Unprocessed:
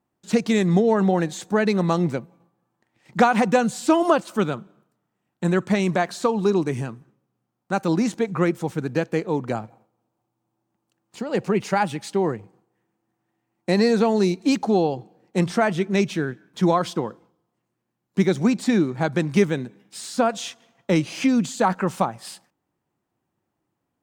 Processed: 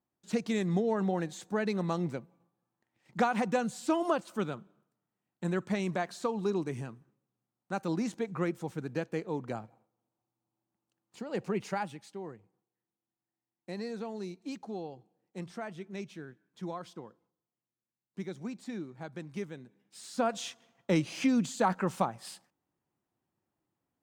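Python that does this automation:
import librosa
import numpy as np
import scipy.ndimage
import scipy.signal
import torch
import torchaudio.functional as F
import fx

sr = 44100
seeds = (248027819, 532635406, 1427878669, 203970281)

y = fx.gain(x, sr, db=fx.line((11.68, -11.0), (12.16, -20.0), (19.6, -20.0), (20.34, -7.5)))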